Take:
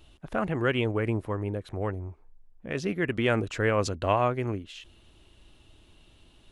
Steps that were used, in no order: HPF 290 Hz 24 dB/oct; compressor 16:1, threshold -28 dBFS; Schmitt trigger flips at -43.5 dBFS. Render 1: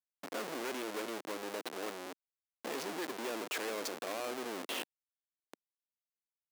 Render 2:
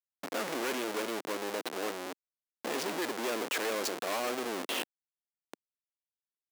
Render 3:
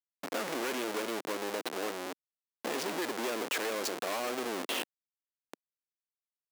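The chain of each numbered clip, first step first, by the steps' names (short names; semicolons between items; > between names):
compressor > Schmitt trigger > HPF; Schmitt trigger > compressor > HPF; Schmitt trigger > HPF > compressor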